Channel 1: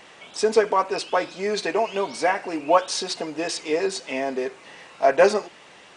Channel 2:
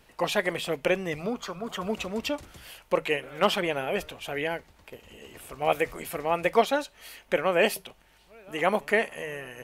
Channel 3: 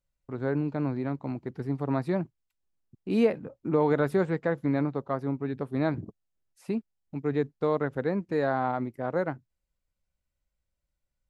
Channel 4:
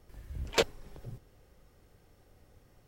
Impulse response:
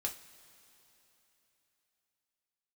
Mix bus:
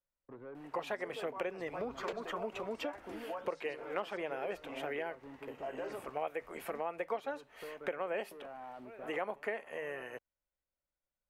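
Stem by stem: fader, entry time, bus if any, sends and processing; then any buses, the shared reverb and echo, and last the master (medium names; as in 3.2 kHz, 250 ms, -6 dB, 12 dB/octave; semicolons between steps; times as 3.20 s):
-16.5 dB, 0.60 s, no send, peak limiter -14 dBFS, peak gain reduction 9.5 dB
-0.5 dB, 0.55 s, no send, none
-3.5 dB, 0.00 s, no send, compression 6:1, threshold -35 dBFS, peak gain reduction 16.5 dB; saturation -36.5 dBFS, distortion -10 dB
-6.0 dB, 1.50 s, no send, none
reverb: none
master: three-band isolator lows -13 dB, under 280 Hz, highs -13 dB, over 2.2 kHz; compression 4:1, threshold -36 dBFS, peak gain reduction 16.5 dB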